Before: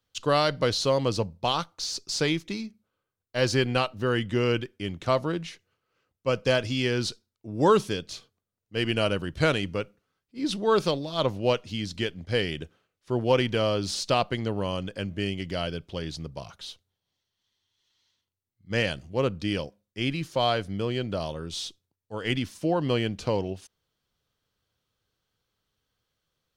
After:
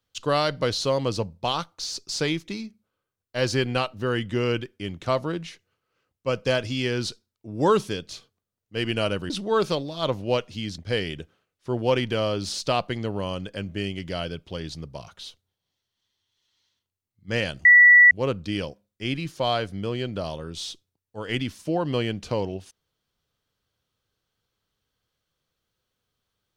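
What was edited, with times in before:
9.3–10.46 cut
11.94–12.2 cut
19.07 add tone 1950 Hz -9 dBFS 0.46 s

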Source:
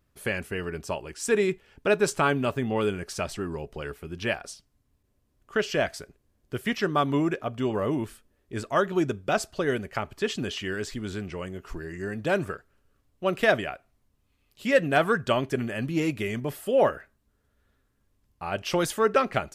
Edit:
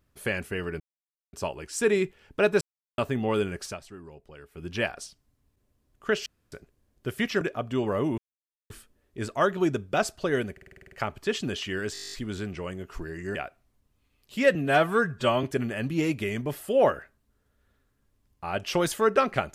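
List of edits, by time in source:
0.8 insert silence 0.53 s
2.08–2.45 mute
3.11–4.11 dip -12.5 dB, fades 0.14 s
5.73–5.99 room tone
6.88–7.28 cut
8.05 insert silence 0.52 s
9.87 stutter 0.05 s, 9 plays
10.88 stutter 0.02 s, 11 plays
12.1–13.63 cut
14.83–15.42 stretch 1.5×

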